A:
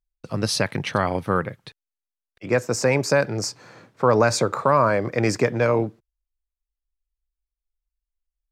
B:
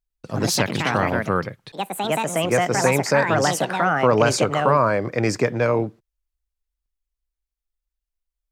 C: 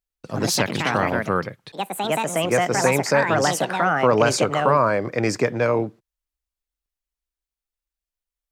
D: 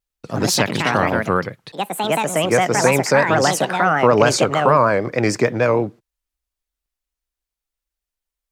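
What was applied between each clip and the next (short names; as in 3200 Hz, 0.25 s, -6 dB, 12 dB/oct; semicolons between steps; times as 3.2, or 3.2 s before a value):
echoes that change speed 0.103 s, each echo +4 st, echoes 2
low shelf 62 Hz -11.5 dB
vibrato 6.6 Hz 74 cents; gain +3.5 dB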